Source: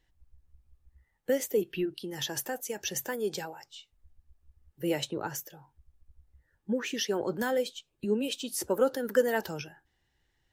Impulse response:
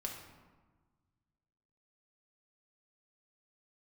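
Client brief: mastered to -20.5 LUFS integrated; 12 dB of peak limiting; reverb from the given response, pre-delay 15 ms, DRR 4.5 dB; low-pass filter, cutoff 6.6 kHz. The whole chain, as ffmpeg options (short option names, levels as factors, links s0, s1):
-filter_complex "[0:a]lowpass=6600,alimiter=level_in=1.19:limit=0.0631:level=0:latency=1,volume=0.841,asplit=2[s0][s1];[1:a]atrim=start_sample=2205,adelay=15[s2];[s1][s2]afir=irnorm=-1:irlink=0,volume=0.631[s3];[s0][s3]amix=inputs=2:normalize=0,volume=5.01"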